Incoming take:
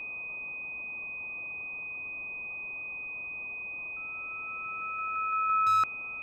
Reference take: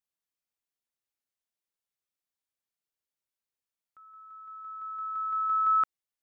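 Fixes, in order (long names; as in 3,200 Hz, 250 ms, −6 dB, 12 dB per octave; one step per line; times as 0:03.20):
clipped peaks rebuilt −21 dBFS
notch filter 2,500 Hz, Q 30
noise reduction from a noise print 30 dB
echo removal 1,047 ms −17 dB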